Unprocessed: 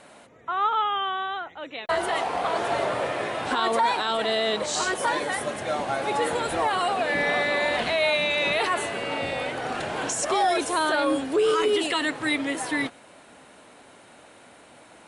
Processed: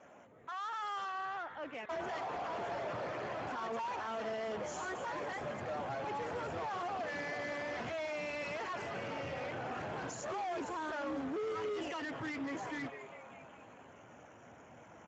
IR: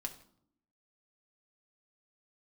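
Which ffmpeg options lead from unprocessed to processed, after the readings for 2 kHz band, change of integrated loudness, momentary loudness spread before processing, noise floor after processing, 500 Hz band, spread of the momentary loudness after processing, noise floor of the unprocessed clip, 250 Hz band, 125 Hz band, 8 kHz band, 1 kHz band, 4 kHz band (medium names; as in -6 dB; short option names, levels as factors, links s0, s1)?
-15.5 dB, -15.0 dB, 7 LU, -57 dBFS, -14.0 dB, 15 LU, -51 dBFS, -12.5 dB, -7.5 dB, -19.5 dB, -14.0 dB, -21.0 dB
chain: -filter_complex "[0:a]acrusher=bits=11:mix=0:aa=0.000001,asuperstop=centerf=4500:order=8:qfactor=1.5,asplit=7[s0][s1][s2][s3][s4][s5][s6];[s1]adelay=201,afreqshift=130,volume=0.126[s7];[s2]adelay=402,afreqshift=260,volume=0.0804[s8];[s3]adelay=603,afreqshift=390,volume=0.0513[s9];[s4]adelay=804,afreqshift=520,volume=0.0331[s10];[s5]adelay=1005,afreqshift=650,volume=0.0211[s11];[s6]adelay=1206,afreqshift=780,volume=0.0135[s12];[s0][s7][s8][s9][s10][s11][s12]amix=inputs=7:normalize=0,asubboost=boost=2.5:cutoff=160,alimiter=limit=0.15:level=0:latency=1:release=101,asoftclip=type=tanh:threshold=0.0224,highshelf=f=2700:g=-8.5,dynaudnorm=f=110:g=11:m=1.41,volume=0.501" -ar 16000 -c:a libspeex -b:a 13k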